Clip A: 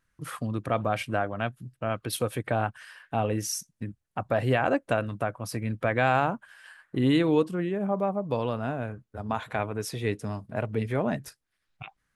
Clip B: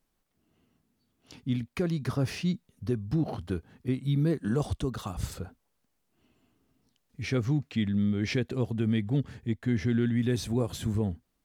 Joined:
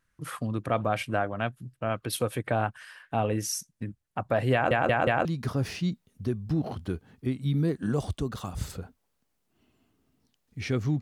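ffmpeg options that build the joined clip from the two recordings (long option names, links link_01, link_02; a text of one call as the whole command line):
ffmpeg -i cue0.wav -i cue1.wav -filter_complex "[0:a]apad=whole_dur=11.01,atrim=end=11.01,asplit=4[link_01][link_02][link_03][link_04];[link_01]atrim=end=4.712[link_05];[link_02]atrim=start=4.528:end=4.712[link_06];[link_03]atrim=start=4.528:end=4.712[link_07];[link_04]atrim=start=4.528:end=4.712[link_08];[1:a]atrim=start=1.868:end=7.63[link_09];[link_05][link_06]acrossfade=duration=0.004:curve1=hsin:curve2=hsin[link_10];[link_10][link_07]acrossfade=duration=0.004:curve1=hsin:curve2=hsin[link_11];[link_11][link_08]acrossfade=duration=0.004:curve1=hsin:curve2=hsin[link_12];[link_12][link_09]acrossfade=duration=0.004:curve1=hsin:curve2=hsin" out.wav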